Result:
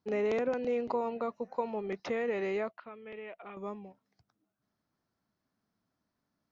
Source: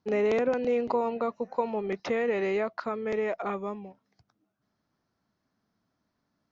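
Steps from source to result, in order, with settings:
0:02.71–0:03.57: transistor ladder low-pass 3,200 Hz, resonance 65%
level −5 dB

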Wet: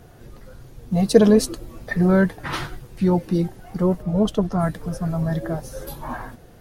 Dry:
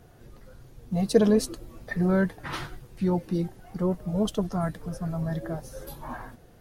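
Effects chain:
0:04.02–0:04.59: high-shelf EQ 4,400 Hz −9 dB
level +6.5 dB

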